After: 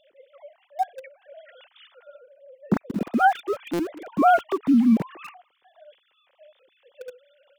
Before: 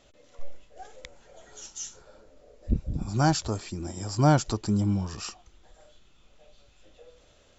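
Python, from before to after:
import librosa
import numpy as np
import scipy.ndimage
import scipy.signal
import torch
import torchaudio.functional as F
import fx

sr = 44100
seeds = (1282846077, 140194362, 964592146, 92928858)

p1 = fx.sine_speech(x, sr)
p2 = np.where(np.abs(p1) >= 10.0 ** (-33.0 / 20.0), p1, 0.0)
p3 = p1 + (p2 * librosa.db_to_amplitude(-4.5))
y = fx.buffer_glitch(p3, sr, at_s=(3.73,), block=256, repeats=10)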